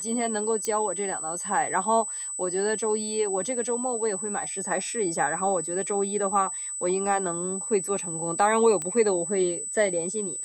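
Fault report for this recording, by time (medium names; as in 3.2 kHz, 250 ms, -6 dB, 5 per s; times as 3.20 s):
whine 8 kHz -31 dBFS
0.65 s: pop -14 dBFS
8.82 s: pop -18 dBFS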